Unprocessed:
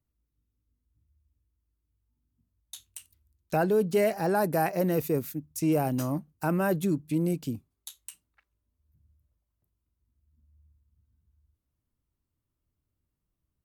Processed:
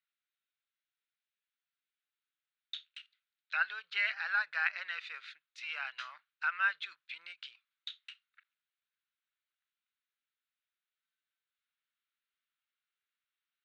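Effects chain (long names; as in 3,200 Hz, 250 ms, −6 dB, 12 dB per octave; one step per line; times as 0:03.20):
elliptic band-pass filter 1,400–3,900 Hz, stop band 70 dB
every ending faded ahead of time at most 500 dB per second
level +7 dB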